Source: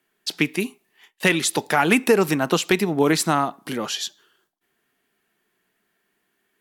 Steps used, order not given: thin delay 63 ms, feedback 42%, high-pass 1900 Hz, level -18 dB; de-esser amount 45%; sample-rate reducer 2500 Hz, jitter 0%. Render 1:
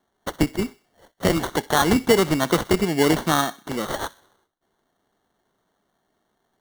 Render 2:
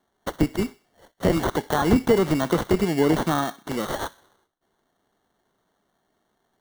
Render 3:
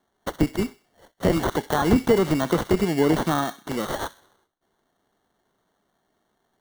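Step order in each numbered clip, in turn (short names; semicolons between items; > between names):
de-esser > sample-rate reducer > thin delay; sample-rate reducer > de-esser > thin delay; sample-rate reducer > thin delay > de-esser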